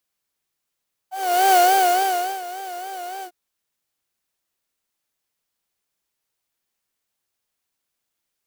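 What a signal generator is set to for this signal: synth patch with vibrato F#5, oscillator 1 triangle, interval +12 st, oscillator 2 level -8 dB, sub -17.5 dB, noise -7 dB, filter highpass, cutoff 300 Hz, Q 4.4, filter envelope 1.5 oct, filter decay 0.08 s, attack 0.422 s, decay 0.88 s, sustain -18 dB, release 0.08 s, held 2.12 s, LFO 3.5 Hz, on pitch 91 cents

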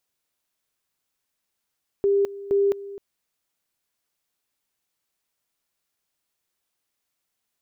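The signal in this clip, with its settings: two-level tone 399 Hz -16.5 dBFS, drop 17 dB, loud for 0.21 s, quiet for 0.26 s, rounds 2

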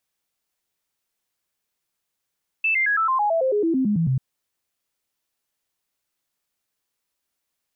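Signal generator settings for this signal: stepped sine 2640 Hz down, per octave 3, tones 14, 0.11 s, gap 0.00 s -17.5 dBFS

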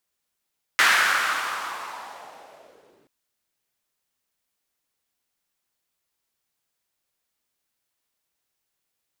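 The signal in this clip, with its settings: swept filtered noise white, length 2.28 s bandpass, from 1700 Hz, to 300 Hz, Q 2.8, linear, gain ramp -38 dB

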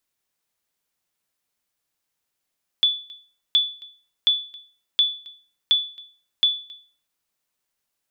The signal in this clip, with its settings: sonar ping 3460 Hz, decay 0.41 s, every 0.72 s, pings 6, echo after 0.27 s, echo -24 dB -10.5 dBFS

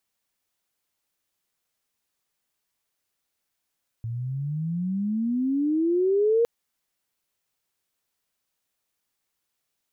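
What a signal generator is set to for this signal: gliding synth tone sine, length 2.41 s, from 112 Hz, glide +25 st, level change +11 dB, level -17 dB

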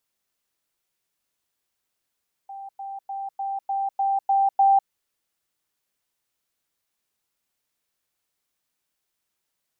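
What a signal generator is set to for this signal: level ladder 786 Hz -34.5 dBFS, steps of 3 dB, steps 8, 0.20 s 0.10 s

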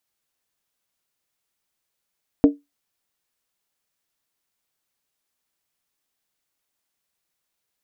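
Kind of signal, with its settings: skin hit, lowest mode 287 Hz, decay 0.19 s, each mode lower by 8.5 dB, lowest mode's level -5.5 dB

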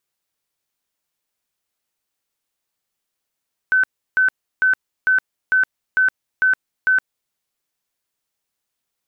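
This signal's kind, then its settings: tone bursts 1520 Hz, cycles 176, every 0.45 s, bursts 8, -12 dBFS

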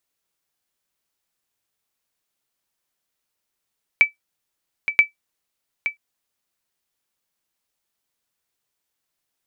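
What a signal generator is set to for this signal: sonar ping 2310 Hz, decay 0.13 s, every 0.98 s, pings 2, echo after 0.87 s, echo -10 dB -4 dBFS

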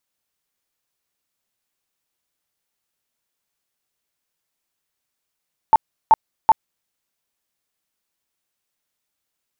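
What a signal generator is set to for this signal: tone bursts 884 Hz, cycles 25, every 0.38 s, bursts 3, -6.5 dBFS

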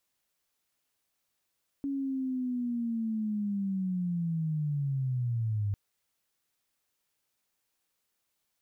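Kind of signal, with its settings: chirp linear 280 Hz -> 99 Hz -29.5 dBFS -> -27 dBFS 3.90 s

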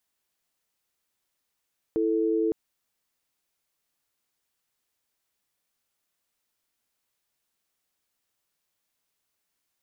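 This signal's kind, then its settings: chord E4/A4 sine, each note -24.5 dBFS 0.56 s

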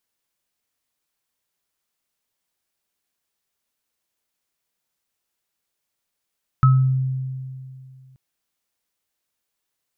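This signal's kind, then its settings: sine partials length 1.53 s, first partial 131 Hz, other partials 1290 Hz, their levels -6 dB, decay 2.42 s, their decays 0.36 s, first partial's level -9.5 dB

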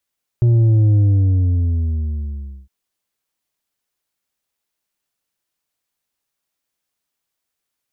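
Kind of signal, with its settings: sub drop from 120 Hz, over 2.26 s, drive 5.5 dB, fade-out 1.72 s, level -10.5 dB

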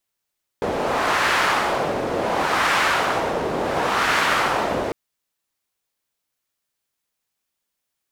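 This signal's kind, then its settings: wind-like swept noise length 4.30 s, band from 500 Hz, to 1500 Hz, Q 1.2, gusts 3, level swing 5 dB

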